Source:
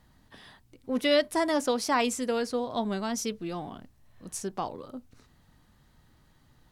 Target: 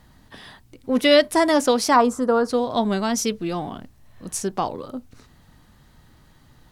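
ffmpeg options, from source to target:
-filter_complex "[0:a]asplit=3[a][b][c];[a]afade=t=out:st=1.95:d=0.02[d];[b]highshelf=f=1.7k:t=q:w=3:g=-11,afade=t=in:st=1.95:d=0.02,afade=t=out:st=2.48:d=0.02[e];[c]afade=t=in:st=2.48:d=0.02[f];[d][e][f]amix=inputs=3:normalize=0,volume=8.5dB"

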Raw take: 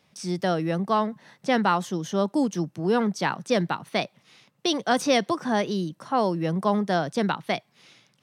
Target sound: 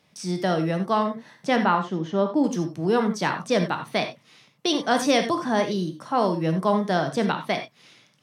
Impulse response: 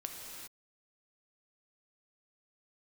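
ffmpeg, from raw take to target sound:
-filter_complex "[0:a]asettb=1/sr,asplit=3[a][b][c];[a]atrim=end=1.564[d];[b]atrim=start=1.56:end=2.44,asetpts=PTS-STARTPTS,afade=t=in:d=0.004:c=qsin,afade=t=out:st=0.876:d=0.004:c=qsin,lowpass=2.9k[e];[c]atrim=start=2.436[f];[d][e]acrossfade=d=0.004:c1=hsin:c2=qsin[g];[g][f]acrossfade=d=0.004:c1=qsin:c2=hsin[h];[1:a]atrim=start_sample=2205,atrim=end_sample=3969,asetrate=39249,aresample=44100[i];[h][i]afir=irnorm=-1:irlink=0,volume=3.5dB"

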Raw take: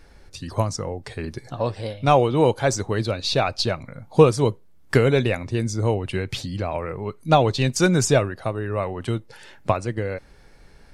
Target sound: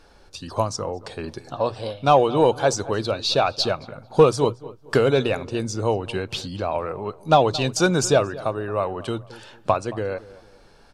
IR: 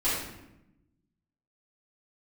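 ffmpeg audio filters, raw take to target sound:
-filter_complex "[0:a]asplit=2[a][b];[b]highpass=f=720:p=1,volume=10dB,asoftclip=type=tanh:threshold=-2.5dB[c];[a][c]amix=inputs=2:normalize=0,lowpass=f=3.7k:p=1,volume=-6dB,equalizer=f=2k:w=3:g=-12.5,bandreject=f=60:t=h:w=6,bandreject=f=120:t=h:w=6,asplit=2[d][e];[e]adelay=223,lowpass=f=2k:p=1,volume=-18dB,asplit=2[f][g];[g]adelay=223,lowpass=f=2k:p=1,volume=0.35,asplit=2[h][i];[i]adelay=223,lowpass=f=2k:p=1,volume=0.35[j];[f][h][j]amix=inputs=3:normalize=0[k];[d][k]amix=inputs=2:normalize=0"

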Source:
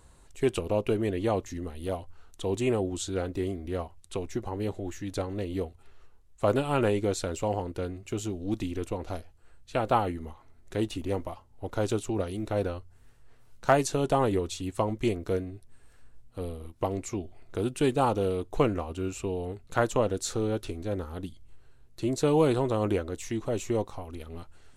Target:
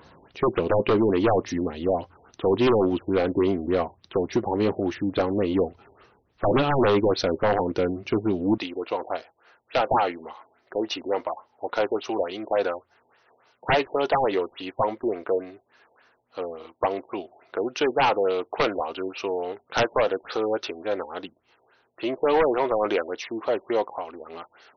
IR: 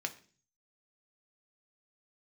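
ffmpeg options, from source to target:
-af "asetnsamples=n=441:p=0,asendcmd='8.58 highpass f 590',highpass=170,aeval=exprs='0.398*sin(PI/2*5.62*val(0)/0.398)':c=same,afftfilt=real='re*lt(b*sr/1024,920*pow(6400/920,0.5+0.5*sin(2*PI*3.5*pts/sr)))':imag='im*lt(b*sr/1024,920*pow(6400/920,0.5+0.5*sin(2*PI*3.5*pts/sr)))':win_size=1024:overlap=0.75,volume=-7dB"

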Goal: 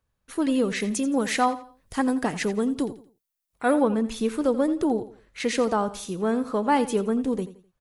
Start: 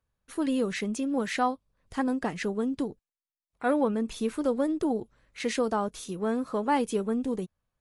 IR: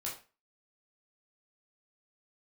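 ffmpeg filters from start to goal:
-filter_complex "[0:a]asettb=1/sr,asplit=3[a][b][c];[a]atrim=end=0.804[d];[b]atrim=start=0.8:end=3.82,asetpts=PTS-STARTPTS,afade=t=in:d=0.004:c=qsin,afade=t=out:st=3.016:d=0.004:c=qsin,highshelf=f=7.4k:g=11[e];[c]atrim=start=3.816[f];[d][e]acrossfade=d=0.004:c1=hsin:c2=qsin[g];[g][f]acrossfade=d=0.004:c1=qsin:c2=hsin,aecho=1:1:85|170|255:0.178|0.0569|0.0182,volume=4dB"

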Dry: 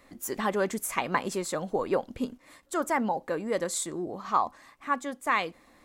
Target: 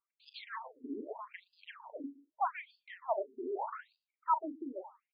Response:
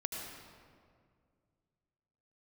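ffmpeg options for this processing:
-filter_complex "[0:a]anlmdn=0.631,firequalizer=gain_entry='entry(160,0);entry(240,-3);entry(430,-17);entry(810,6);entry(1200,-13);entry(2000,-12);entry(5300,-4);entry(8300,-28);entry(14000,-7)':delay=0.05:min_phase=1,areverse,acompressor=mode=upward:threshold=-42dB:ratio=2.5,areverse,alimiter=level_in=1.5dB:limit=-24dB:level=0:latency=1:release=13,volume=-1.5dB,asetrate=50274,aresample=44100,asplit=2[a][b];[b]adelay=39,volume=-10.5dB[c];[a][c]amix=inputs=2:normalize=0,asplit=2[d][e];[e]adelay=118,lowpass=f=3.3k:p=1,volume=-22dB,asplit=2[f][g];[g]adelay=118,lowpass=f=3.3k:p=1,volume=0.23[h];[f][h]amix=inputs=2:normalize=0[i];[d][i]amix=inputs=2:normalize=0,afftfilt=real='re*between(b*sr/1024,310*pow(3600/310,0.5+0.5*sin(2*PI*0.81*pts/sr))/1.41,310*pow(3600/310,0.5+0.5*sin(2*PI*0.81*pts/sr))*1.41)':imag='im*between(b*sr/1024,310*pow(3600/310,0.5+0.5*sin(2*PI*0.81*pts/sr))/1.41,310*pow(3600/310,0.5+0.5*sin(2*PI*0.81*pts/sr))*1.41)':win_size=1024:overlap=0.75,volume=7dB"

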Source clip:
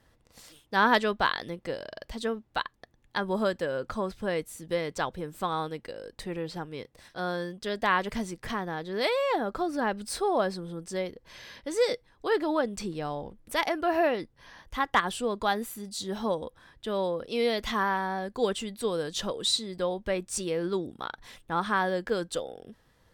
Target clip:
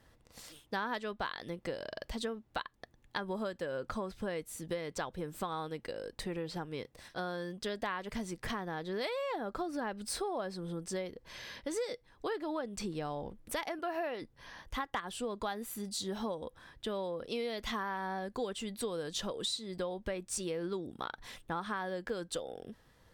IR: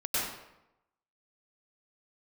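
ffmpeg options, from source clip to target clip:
-filter_complex "[0:a]asettb=1/sr,asplit=3[a][b][c];[a]atrim=end=13.794[d];[b]atrim=start=13.79:end=14.22,asetpts=PTS-STARTPTS,afade=t=in:d=0.004:c=qsin,afade=t=out:st=0.426:d=0.004:c=qsin,highpass=f=340:p=1[e];[c]atrim=start=14.216[f];[d][e]acrossfade=d=0.004:c1=hsin:c2=qsin[g];[g][f]acrossfade=d=0.004:c1=qsin:c2=hsin,acompressor=threshold=-34dB:ratio=6"

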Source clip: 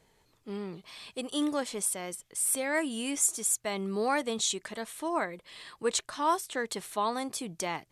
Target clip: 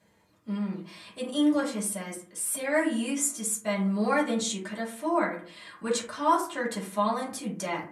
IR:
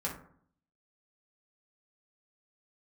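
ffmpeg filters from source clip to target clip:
-filter_complex "[0:a]highpass=77[a];[1:a]atrim=start_sample=2205,asetrate=52920,aresample=44100[b];[a][b]afir=irnorm=-1:irlink=0"

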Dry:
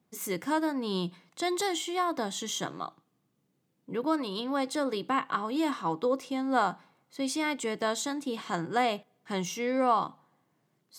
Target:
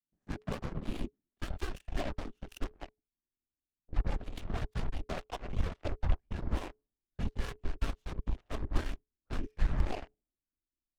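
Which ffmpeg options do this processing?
-filter_complex "[0:a]asplit=3[a][b][c];[a]afade=t=out:st=7.28:d=0.02[d];[b]aeval=exprs='if(lt(val(0),0),0.447*val(0),val(0))':c=same,afade=t=in:st=7.28:d=0.02,afade=t=out:st=7.73:d=0.02[e];[c]afade=t=in:st=7.73:d=0.02[f];[d][e][f]amix=inputs=3:normalize=0,adynamicsmooth=sensitivity=6:basefreq=680,adynamicequalizer=threshold=0.00447:dfrequency=170:dqfactor=1.4:tfrequency=170:tqfactor=1.4:attack=5:release=100:ratio=0.375:range=2:mode=boostabove:tftype=bell,acompressor=threshold=-28dB:ratio=6,afftfilt=real='hypot(re,im)*cos(2*PI*random(0))':imag='hypot(re,im)*sin(2*PI*random(1))':win_size=512:overlap=0.75,aeval=exprs='0.0562*(cos(1*acos(clip(val(0)/0.0562,-1,1)))-cos(1*PI/2))+0.000562*(cos(4*acos(clip(val(0)/0.0562,-1,1)))-cos(4*PI/2))+0.000355*(cos(5*acos(clip(val(0)/0.0562,-1,1)))-cos(5*PI/2))+0.00891*(cos(7*acos(clip(val(0)/0.0562,-1,1)))-cos(7*PI/2))':c=same,afreqshift=-430,asubboost=boost=9:cutoff=53,volume=1dB"

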